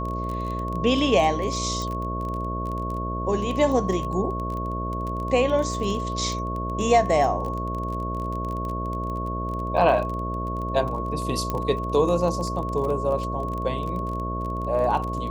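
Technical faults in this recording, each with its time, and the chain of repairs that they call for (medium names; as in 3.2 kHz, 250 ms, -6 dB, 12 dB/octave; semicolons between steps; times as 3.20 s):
buzz 60 Hz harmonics 11 -30 dBFS
crackle 23 per s -29 dBFS
whine 1.1 kHz -30 dBFS
1.82 s: pop -18 dBFS
11.50 s: pop -13 dBFS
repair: de-click; band-stop 1.1 kHz, Q 30; de-hum 60 Hz, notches 11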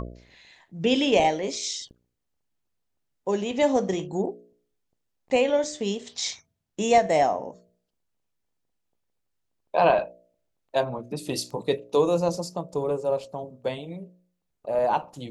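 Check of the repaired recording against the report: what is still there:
1.82 s: pop
11.50 s: pop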